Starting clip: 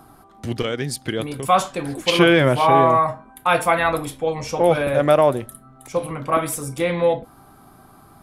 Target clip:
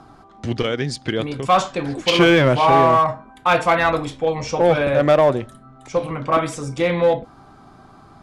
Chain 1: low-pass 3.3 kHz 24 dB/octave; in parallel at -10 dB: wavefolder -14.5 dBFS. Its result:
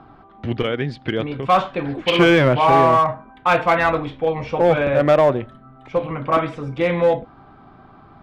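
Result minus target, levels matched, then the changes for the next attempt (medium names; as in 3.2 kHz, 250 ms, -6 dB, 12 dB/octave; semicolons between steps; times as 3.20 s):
8 kHz band -10.5 dB
change: low-pass 6.8 kHz 24 dB/octave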